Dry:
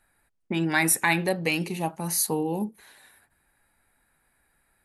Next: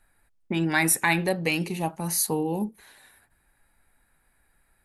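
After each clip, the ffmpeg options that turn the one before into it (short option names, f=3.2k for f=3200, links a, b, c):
-af "lowshelf=f=61:g=9.5"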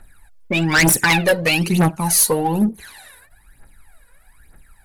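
-af "aphaser=in_gain=1:out_gain=1:delay=2.1:decay=0.75:speed=1.1:type=triangular,aeval=exprs='0.531*sin(PI/2*2.82*val(0)/0.531)':c=same,aeval=exprs='0.562*(cos(1*acos(clip(val(0)/0.562,-1,1)))-cos(1*PI/2))+0.0112*(cos(8*acos(clip(val(0)/0.562,-1,1)))-cos(8*PI/2))':c=same,volume=-4dB"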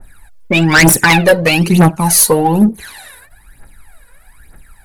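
-af "adynamicequalizer=threshold=0.0398:dfrequency=1600:dqfactor=0.7:tfrequency=1600:tqfactor=0.7:attack=5:release=100:ratio=0.375:range=2.5:mode=cutabove:tftype=highshelf,volume=7.5dB"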